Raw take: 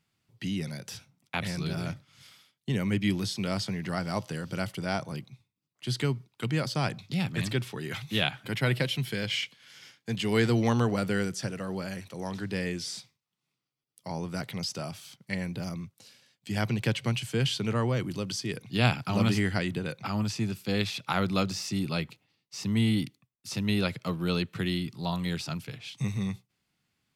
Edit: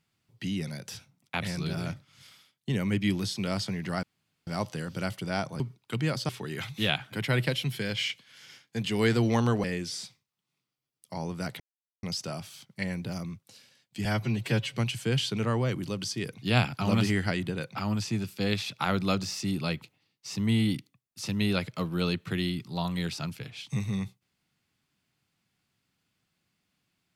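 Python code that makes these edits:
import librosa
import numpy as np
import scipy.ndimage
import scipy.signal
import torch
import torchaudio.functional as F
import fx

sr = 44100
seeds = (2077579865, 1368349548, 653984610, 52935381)

y = fx.edit(x, sr, fx.insert_room_tone(at_s=4.03, length_s=0.44),
    fx.cut(start_s=5.16, length_s=0.94),
    fx.cut(start_s=6.79, length_s=0.83),
    fx.cut(start_s=10.97, length_s=1.61),
    fx.insert_silence(at_s=14.54, length_s=0.43),
    fx.stretch_span(start_s=16.56, length_s=0.46, factor=1.5), tone=tone)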